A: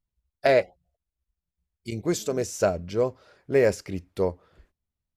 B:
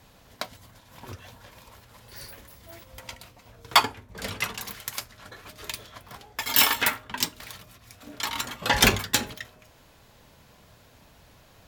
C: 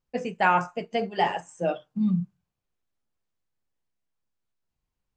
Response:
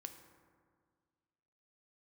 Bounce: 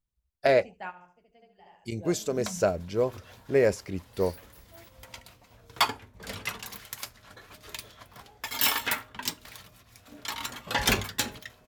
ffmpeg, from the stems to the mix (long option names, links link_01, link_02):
-filter_complex "[0:a]volume=-2dB,asplit=2[link_01][link_02];[1:a]acontrast=34,adelay=2050,volume=-10dB[link_03];[2:a]adelay=400,volume=-17dB,asplit=2[link_04][link_05];[link_05]volume=-17.5dB[link_06];[link_02]apad=whole_len=245328[link_07];[link_04][link_07]sidechaingate=range=-17dB:threshold=-59dB:ratio=16:detection=peak[link_08];[link_06]aecho=0:1:73|146|219|292:1|0.28|0.0784|0.022[link_09];[link_01][link_03][link_08][link_09]amix=inputs=4:normalize=0"